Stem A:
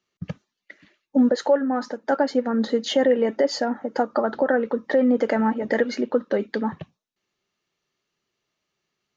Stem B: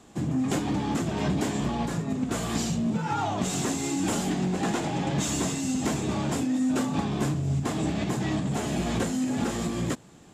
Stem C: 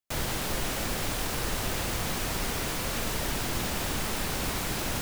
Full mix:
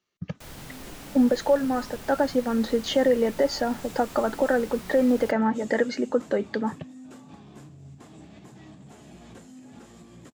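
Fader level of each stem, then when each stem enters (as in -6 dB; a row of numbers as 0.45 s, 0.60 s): -2.0 dB, -19.5 dB, -12.5 dB; 0.00 s, 0.35 s, 0.30 s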